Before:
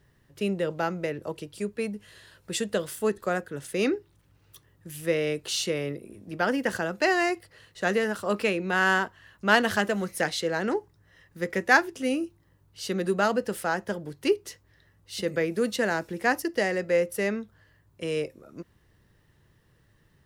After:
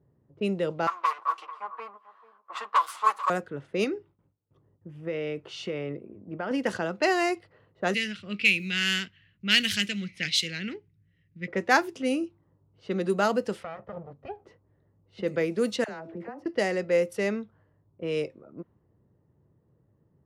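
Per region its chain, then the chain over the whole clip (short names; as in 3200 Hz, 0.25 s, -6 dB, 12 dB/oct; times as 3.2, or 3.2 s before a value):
0.87–3.3 minimum comb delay 8.8 ms + resonant high-pass 1100 Hz, resonance Q 12 + echo 0.442 s -15.5 dB
3.84–6.51 notch 4000 Hz, Q 11 + gate with hold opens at -52 dBFS, closes at -55 dBFS + compressor 4:1, threshold -27 dBFS
7.94–11.48 EQ curve 180 Hz 0 dB, 920 Hz -28 dB, 2300 Hz +11 dB, 11000 Hz +2 dB + short-mantissa float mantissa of 4-bit
13.63–14.45 minimum comb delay 1.6 ms + compressor 16:1, threshold -30 dBFS + air absorption 84 m
15.84–16.46 de-hum 328.9 Hz, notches 2 + compressor 16:1, threshold -32 dBFS + dispersion lows, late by 48 ms, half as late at 840 Hz
whole clip: HPF 97 Hz; bell 1700 Hz -6 dB 0.26 oct; low-pass opened by the level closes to 640 Hz, open at -21.5 dBFS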